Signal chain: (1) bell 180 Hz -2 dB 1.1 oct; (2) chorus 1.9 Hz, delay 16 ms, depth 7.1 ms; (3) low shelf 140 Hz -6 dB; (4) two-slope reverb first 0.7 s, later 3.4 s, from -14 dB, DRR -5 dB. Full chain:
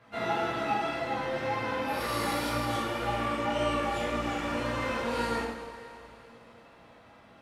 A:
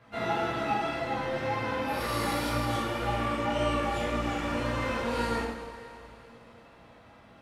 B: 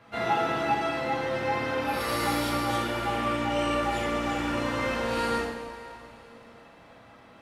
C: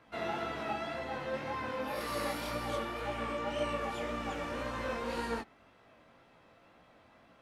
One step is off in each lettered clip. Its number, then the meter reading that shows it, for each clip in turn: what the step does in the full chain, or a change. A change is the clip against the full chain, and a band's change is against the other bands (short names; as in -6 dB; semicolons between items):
3, 125 Hz band +3.5 dB; 2, momentary loudness spread change -4 LU; 4, 500 Hz band +2.0 dB